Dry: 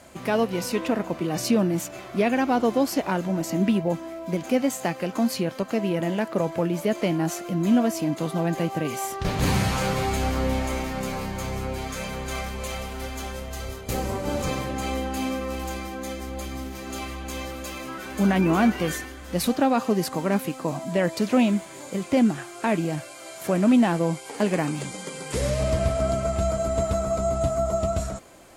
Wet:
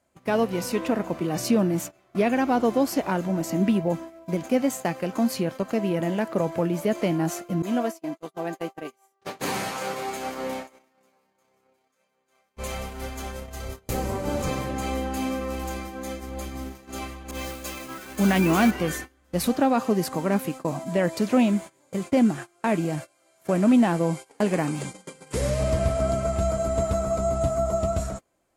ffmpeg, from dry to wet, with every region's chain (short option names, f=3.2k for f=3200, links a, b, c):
-filter_complex "[0:a]asettb=1/sr,asplit=3[a][b][c];[a]atrim=end=7.624[d];[b]atrim=start=7.62:end=12.57,asetpts=PTS-STARTPTS,afade=t=in:d=0.004:c=qsin,afade=t=out:st=4.946:d=0.004:c=qsin,agate=range=-33dB:threshold=-22dB:ratio=3:release=100:detection=peak,highpass=330[e];[c]atrim=start=12.566[f];[d][e]acrossfade=d=0.004:c1=hsin:c2=qsin[g];[g][f]acrossfade=d=0.004:c1=qsin:c2=hsin,asettb=1/sr,asplit=3[h][i][j];[h]atrim=end=17.314[k];[i]atrim=start=17.31:end=18.71,asetpts=PTS-STARTPTS,afade=t=in:d=0.004:c=qsin,afade=t=out:st=1.396:d=0.004:c=qsin,acrusher=bits=8:dc=4:mix=0:aa=0.000001,adynamicequalizer=threshold=0.01:dfrequency=1900:dqfactor=0.7:tfrequency=1900:tqfactor=0.7:attack=5:release=100:ratio=0.375:range=4:mode=boostabove:tftype=highshelf[l];[j]atrim=start=18.706[m];[k][l]acrossfade=d=0.004:c1=hsin:c2=qsin[n];[n][m]acrossfade=d=0.004:c1=qsin:c2=hsin,agate=range=-22dB:threshold=-33dB:ratio=16:detection=peak,equalizer=f=3.6k:t=o:w=1.6:g=-3"